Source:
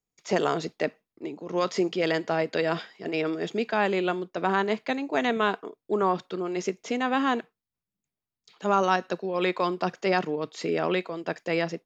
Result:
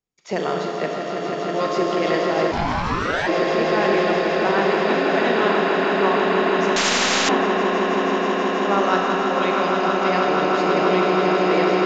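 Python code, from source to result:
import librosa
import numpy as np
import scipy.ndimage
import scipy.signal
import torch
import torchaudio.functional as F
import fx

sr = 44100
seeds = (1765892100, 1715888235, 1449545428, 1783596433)

y = scipy.signal.sosfilt(scipy.signal.butter(2, 6300.0, 'lowpass', fs=sr, output='sos'), x)
y = fx.echo_swell(y, sr, ms=161, loudest=8, wet_db=-7)
y = fx.rev_schroeder(y, sr, rt60_s=3.7, comb_ms=29, drr_db=0.0)
y = fx.ring_mod(y, sr, carrier_hz=fx.line((2.51, 260.0), (3.26, 1300.0)), at=(2.51, 3.26), fade=0.02)
y = fx.spectral_comp(y, sr, ratio=4.0, at=(6.76, 7.29))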